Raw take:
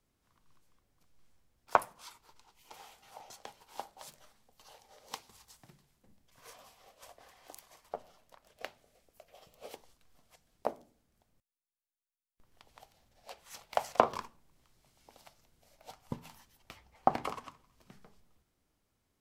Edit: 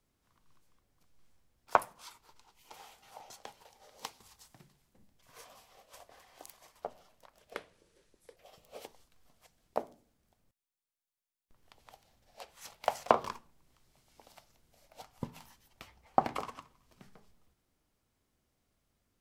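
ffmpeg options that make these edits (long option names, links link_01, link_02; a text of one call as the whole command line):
ffmpeg -i in.wav -filter_complex "[0:a]asplit=4[link_01][link_02][link_03][link_04];[link_01]atrim=end=3.652[link_05];[link_02]atrim=start=4.738:end=8.634[link_06];[link_03]atrim=start=8.63:end=9.26,asetpts=PTS-STARTPTS,asetrate=33516,aresample=44100[link_07];[link_04]atrim=start=9.256[link_08];[link_05][link_06]acrossfade=duration=0.004:curve1=hsin:curve2=hsin[link_09];[link_09][link_07]acrossfade=duration=0.004:curve1=hsin:curve2=hsin[link_10];[link_10][link_08]acrossfade=duration=0.004:curve1=hsin:curve2=hsin" out.wav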